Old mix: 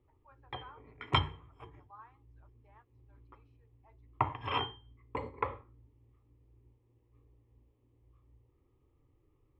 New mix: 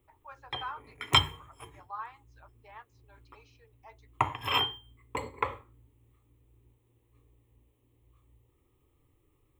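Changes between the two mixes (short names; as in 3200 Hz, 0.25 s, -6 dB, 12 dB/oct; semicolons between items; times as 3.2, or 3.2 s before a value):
speech +10.0 dB; master: remove tape spacing loss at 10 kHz 33 dB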